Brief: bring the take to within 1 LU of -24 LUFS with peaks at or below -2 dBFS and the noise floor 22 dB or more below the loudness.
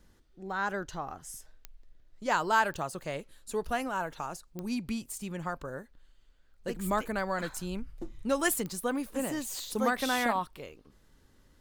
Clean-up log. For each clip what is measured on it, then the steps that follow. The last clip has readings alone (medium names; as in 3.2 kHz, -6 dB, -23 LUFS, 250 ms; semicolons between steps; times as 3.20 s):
clicks found 5; loudness -33.0 LUFS; peak level -14.0 dBFS; loudness target -24.0 LUFS
-> de-click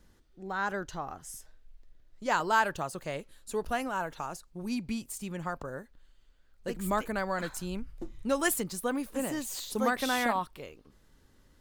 clicks found 0; loudness -33.0 LUFS; peak level -14.0 dBFS; loudness target -24.0 LUFS
-> trim +9 dB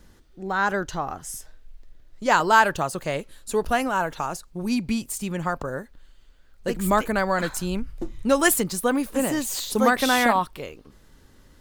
loudness -24.0 LUFS; peak level -5.0 dBFS; noise floor -54 dBFS